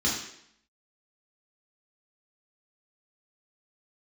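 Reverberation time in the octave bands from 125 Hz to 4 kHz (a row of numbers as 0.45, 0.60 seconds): 0.65, 0.75, 0.70, 0.70, 0.70, 0.70 seconds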